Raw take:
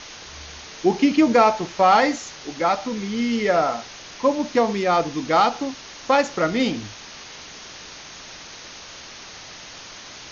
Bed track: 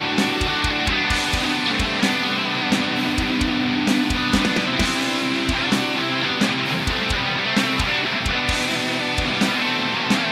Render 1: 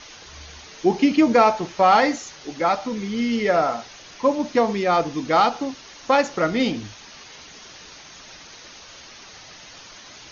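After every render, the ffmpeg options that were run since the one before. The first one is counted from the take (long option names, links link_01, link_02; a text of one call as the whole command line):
ffmpeg -i in.wav -af "afftdn=noise_reduction=6:noise_floor=-40" out.wav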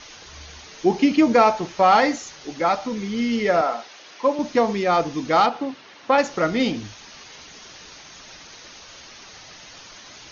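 ffmpeg -i in.wav -filter_complex "[0:a]asettb=1/sr,asplit=3[link_01][link_02][link_03];[link_01]atrim=end=3.614[link_04];[link_02]atrim=start=3.61:end=4.39,asetpts=PTS-STARTPTS,afade=type=in:duration=0.004:curve=qsin,afade=type=out:start_time=0.776:duration=0.004:curve=qsin,highpass=310,lowpass=5500[link_05];[link_03]atrim=start=4.386[link_06];[link_04][link_05]acrossfade=duration=0.004:curve1=hsin:curve2=qsin[link_07];[link_07][link_06]acrossfade=duration=0.004:curve1=qsin:curve2=hsin,asettb=1/sr,asplit=3[link_08][link_09][link_10];[link_08]atrim=end=5.464[link_11];[link_09]atrim=start=5.46:end=6.18,asetpts=PTS-STARTPTS,afade=type=in:duration=0.004:curve=qsin,afade=type=out:start_time=0.716:duration=0.004:curve=qsin,highpass=140,lowpass=3400[link_12];[link_10]atrim=start=6.176[link_13];[link_11][link_12]acrossfade=duration=0.004:curve1=hsin:curve2=qsin[link_14];[link_14][link_13]acrossfade=duration=0.004:curve1=qsin:curve2=hsin" out.wav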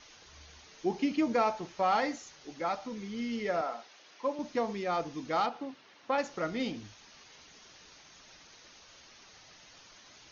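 ffmpeg -i in.wav -af "volume=-12.5dB" out.wav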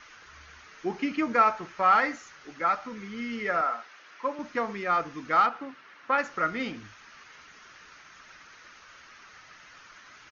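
ffmpeg -i in.wav -af "firequalizer=gain_entry='entry(800,0);entry(1300,13);entry(3600,-2)':delay=0.05:min_phase=1" out.wav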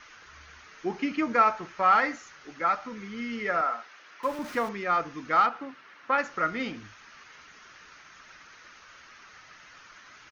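ffmpeg -i in.wav -filter_complex "[0:a]asettb=1/sr,asplit=3[link_01][link_02][link_03];[link_01]atrim=end=4.234[link_04];[link_02]atrim=start=4.23:end=4.69,asetpts=PTS-STARTPTS,afade=type=in:duration=0.004:curve=qsin,afade=type=out:start_time=0.456:duration=0.004:curve=qsin,aeval=exprs='val(0)+0.5*0.0112*sgn(val(0))':channel_layout=same[link_05];[link_03]atrim=start=4.686[link_06];[link_04][link_05]acrossfade=duration=0.004:curve1=hsin:curve2=qsin[link_07];[link_07][link_06]acrossfade=duration=0.004:curve1=qsin:curve2=hsin" out.wav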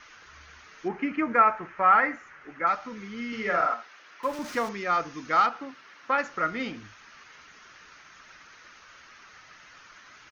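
ffmpeg -i in.wav -filter_complex "[0:a]asettb=1/sr,asplit=3[link_01][link_02][link_03];[link_01]atrim=end=0.884[link_04];[link_02]atrim=start=0.88:end=2.67,asetpts=PTS-STARTPTS,afade=type=in:duration=0.004:curve=qsin,afade=type=out:start_time=1.786:duration=0.004:curve=qsin,highshelf=frequency=2900:width_type=q:width=1.5:gain=-11.5[link_05];[link_03]atrim=start=2.666[link_06];[link_04][link_05]acrossfade=duration=0.004:curve1=hsin:curve2=qsin[link_07];[link_07][link_06]acrossfade=duration=0.004:curve1=qsin:curve2=hsin,asettb=1/sr,asplit=3[link_08][link_09][link_10];[link_08]atrim=end=3.284[link_11];[link_09]atrim=start=3.28:end=3.74,asetpts=PTS-STARTPTS,afade=type=in:duration=0.004:curve=qsin,afade=type=out:start_time=0.456:duration=0.004:curve=qsin,asplit=2[link_12][link_13];[link_13]adelay=45,volume=-2.5dB[link_14];[link_12][link_14]amix=inputs=2:normalize=0,atrim=end_sample=20286[link_15];[link_10]atrim=start=3.736[link_16];[link_11][link_15]acrossfade=duration=0.004:curve1=hsin:curve2=qsin[link_17];[link_17][link_16]acrossfade=duration=0.004:curve1=qsin:curve2=hsin,asettb=1/sr,asplit=3[link_18][link_19][link_20];[link_18]atrim=end=4.334[link_21];[link_19]atrim=start=4.33:end=6.13,asetpts=PTS-STARTPTS,afade=type=in:duration=0.004:curve=qsin,afade=type=out:start_time=1.796:duration=0.004:curve=qsin,equalizer=frequency=6000:width=0.94:gain=6[link_22];[link_20]atrim=start=6.126[link_23];[link_21][link_22]acrossfade=duration=0.004:curve1=hsin:curve2=qsin[link_24];[link_24][link_23]acrossfade=duration=0.004:curve1=qsin:curve2=hsin" out.wav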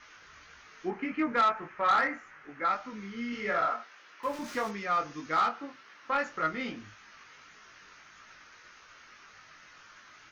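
ffmpeg -i in.wav -af "flanger=delay=19:depth=2.5:speed=1.7,asoftclip=type=tanh:threshold=-18.5dB" out.wav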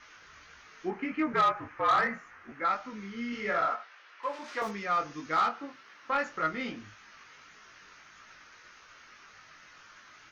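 ffmpeg -i in.wav -filter_complex "[0:a]asettb=1/sr,asplit=3[link_01][link_02][link_03];[link_01]atrim=end=1.334[link_04];[link_02]atrim=start=1.33:end=2.52,asetpts=PTS-STARTPTS,afade=type=in:duration=0.004:curve=qsin,afade=type=out:start_time=1.186:duration=0.004:curve=qsin,afreqshift=-60[link_05];[link_03]atrim=start=2.516[link_06];[link_04][link_05]acrossfade=duration=0.004:curve1=hsin:curve2=qsin[link_07];[link_07][link_06]acrossfade=duration=0.004:curve1=qsin:curve2=hsin,asettb=1/sr,asplit=3[link_08][link_09][link_10];[link_08]atrim=end=3.754[link_11];[link_09]atrim=start=3.75:end=4.62,asetpts=PTS-STARTPTS,afade=type=in:duration=0.004:curve=qsin,afade=type=out:start_time=0.866:duration=0.004:curve=qsin,highpass=480,lowpass=4800[link_12];[link_10]atrim=start=4.616[link_13];[link_11][link_12]acrossfade=duration=0.004:curve1=hsin:curve2=qsin[link_14];[link_14][link_13]acrossfade=duration=0.004:curve1=qsin:curve2=hsin" out.wav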